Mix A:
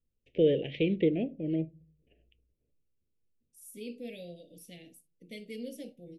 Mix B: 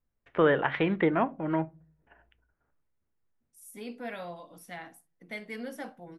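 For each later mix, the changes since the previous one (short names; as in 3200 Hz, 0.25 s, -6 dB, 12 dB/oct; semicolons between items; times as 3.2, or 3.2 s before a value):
master: remove elliptic band-stop 510–2600 Hz, stop band 80 dB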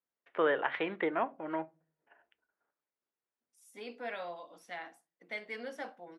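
first voice -4.0 dB; master: add BPF 400–5900 Hz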